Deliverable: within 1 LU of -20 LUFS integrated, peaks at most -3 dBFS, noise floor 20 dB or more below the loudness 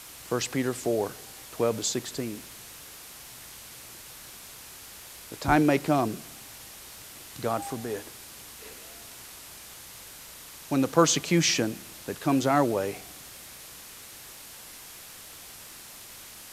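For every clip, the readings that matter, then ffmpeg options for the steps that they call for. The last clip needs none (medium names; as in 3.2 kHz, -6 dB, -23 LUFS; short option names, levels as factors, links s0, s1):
noise floor -46 dBFS; noise floor target -47 dBFS; loudness -27.0 LUFS; peak level -5.5 dBFS; loudness target -20.0 LUFS
-> -af "afftdn=nr=6:nf=-46"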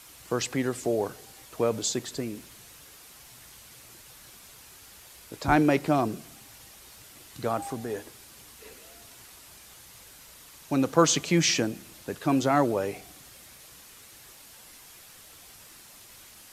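noise floor -51 dBFS; loudness -27.0 LUFS; peak level -5.5 dBFS; loudness target -20.0 LUFS
-> -af "volume=2.24,alimiter=limit=0.708:level=0:latency=1"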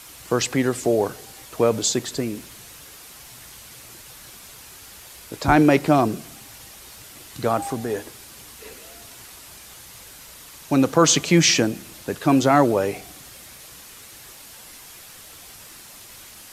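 loudness -20.5 LUFS; peak level -3.0 dBFS; noise floor -44 dBFS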